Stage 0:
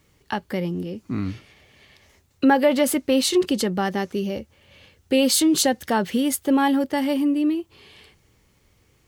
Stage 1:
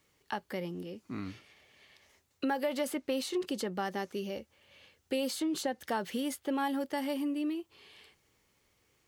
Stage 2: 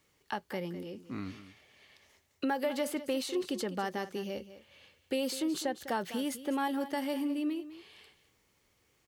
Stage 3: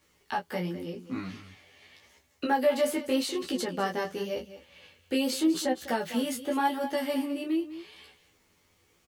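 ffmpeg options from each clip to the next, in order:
-filter_complex "[0:a]lowshelf=f=230:g=-11.5,acrossover=split=1700|4500[a][b][c];[a]acompressor=threshold=-22dB:ratio=4[d];[b]acompressor=threshold=-39dB:ratio=4[e];[c]acompressor=threshold=-37dB:ratio=4[f];[d][e][f]amix=inputs=3:normalize=0,volume=-7dB"
-af "aecho=1:1:202:0.2"
-filter_complex "[0:a]flanger=delay=15.5:depth=6.7:speed=0.87,asplit=2[a][b];[b]adelay=12,volume=-3dB[c];[a][c]amix=inputs=2:normalize=0,volume=6dB"

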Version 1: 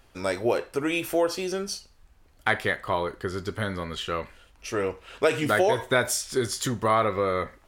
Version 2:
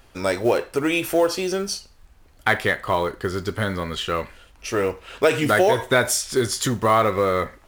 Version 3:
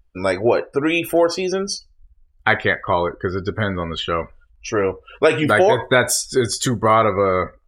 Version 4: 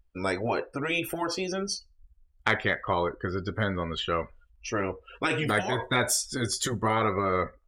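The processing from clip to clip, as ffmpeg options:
-filter_complex "[0:a]asplit=2[a][b];[b]asoftclip=type=tanh:threshold=-17dB,volume=-5dB[c];[a][c]amix=inputs=2:normalize=0,acrusher=bits=7:mode=log:mix=0:aa=0.000001,volume=1.5dB"
-af "afftdn=nr=31:nf=-35,volume=3dB"
-af "afftfilt=real='re*lt(hypot(re,im),1)':imag='im*lt(hypot(re,im),1)':win_size=1024:overlap=0.75,aeval=exprs='0.708*(cos(1*acos(clip(val(0)/0.708,-1,1)))-cos(1*PI/2))+0.0251*(cos(2*acos(clip(val(0)/0.708,-1,1)))-cos(2*PI/2))+0.1*(cos(3*acos(clip(val(0)/0.708,-1,1)))-cos(3*PI/2))+0.0251*(cos(5*acos(clip(val(0)/0.708,-1,1)))-cos(5*PI/2))':c=same,volume=-4dB"

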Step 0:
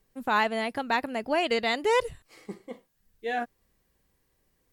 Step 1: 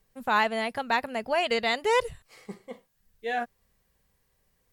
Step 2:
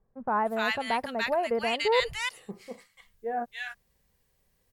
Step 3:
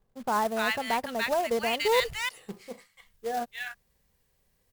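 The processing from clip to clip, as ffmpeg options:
-af "equalizer=f=310:t=o:w=0.33:g=-15,volume=1dB"
-filter_complex "[0:a]acrossover=split=1300[a][b];[b]adelay=290[c];[a][c]amix=inputs=2:normalize=0"
-af "acrusher=bits=3:mode=log:mix=0:aa=0.000001"

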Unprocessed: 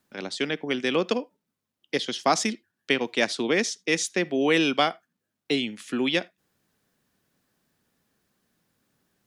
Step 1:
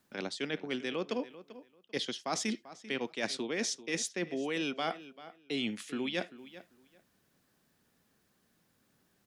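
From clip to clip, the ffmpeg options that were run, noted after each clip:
-filter_complex "[0:a]areverse,acompressor=threshold=-31dB:ratio=10,areverse,asplit=2[a][b];[b]adelay=391,lowpass=f=4.1k:p=1,volume=-15.5dB,asplit=2[c][d];[d]adelay=391,lowpass=f=4.1k:p=1,volume=0.19[e];[a][c][e]amix=inputs=3:normalize=0"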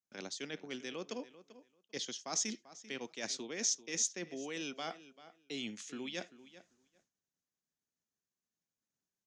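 -af "agate=range=-33dB:threshold=-60dB:ratio=3:detection=peak,lowpass=f=6.5k:t=q:w=5.5,volume=-8dB"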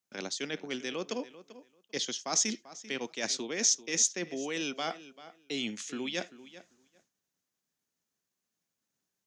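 -af "lowshelf=f=69:g=-9,volume=7dB"

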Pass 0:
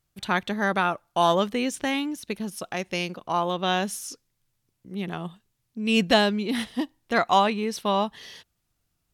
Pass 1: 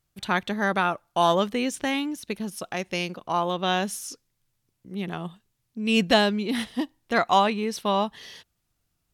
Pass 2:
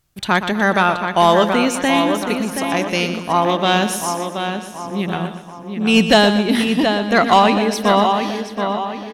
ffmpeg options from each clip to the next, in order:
-af anull
-filter_complex "[0:a]asplit=2[a][b];[b]adelay=726,lowpass=f=3.4k:p=1,volume=-7dB,asplit=2[c][d];[d]adelay=726,lowpass=f=3.4k:p=1,volume=0.45,asplit=2[e][f];[f]adelay=726,lowpass=f=3.4k:p=1,volume=0.45,asplit=2[g][h];[h]adelay=726,lowpass=f=3.4k:p=1,volume=0.45,asplit=2[i][j];[j]adelay=726,lowpass=f=3.4k:p=1,volume=0.45[k];[c][e][g][i][k]amix=inputs=5:normalize=0[l];[a][l]amix=inputs=2:normalize=0,aeval=exprs='0.631*sin(PI/2*1.78*val(0)/0.631)':c=same,asplit=2[m][n];[n]aecho=0:1:121|242|363|484|605:0.299|0.131|0.0578|0.0254|0.0112[o];[m][o]amix=inputs=2:normalize=0"

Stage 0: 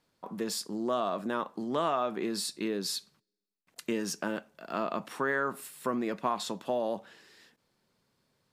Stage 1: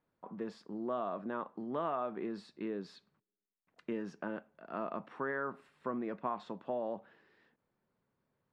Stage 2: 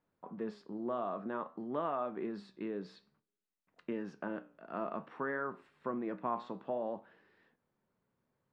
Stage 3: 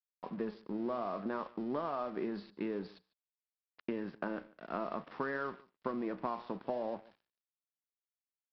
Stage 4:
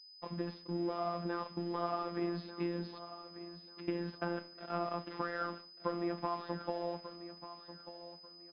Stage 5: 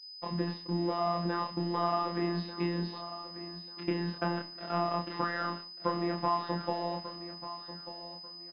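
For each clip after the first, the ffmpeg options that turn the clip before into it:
-af "lowpass=1.8k,volume=-6dB"
-af "highshelf=f=6.1k:g=-9,flanger=delay=9.8:depth=7.5:regen=77:speed=0.55:shape=triangular,volume=4.5dB"
-af "acompressor=threshold=-38dB:ratio=6,aresample=11025,aeval=exprs='sgn(val(0))*max(abs(val(0))-0.001,0)':c=same,aresample=44100,aecho=1:1:147:0.075,volume=6dB"
-af "aecho=1:1:1191|2382|3573:0.224|0.0582|0.0151,afftfilt=real='hypot(re,im)*cos(PI*b)':imag='0':win_size=1024:overlap=0.75,aeval=exprs='val(0)+0.00126*sin(2*PI*5000*n/s)':c=same,volume=4dB"
-filter_complex "[0:a]asplit=2[a][b];[b]adelay=28,volume=-3dB[c];[a][c]amix=inputs=2:normalize=0,volume=5dB"

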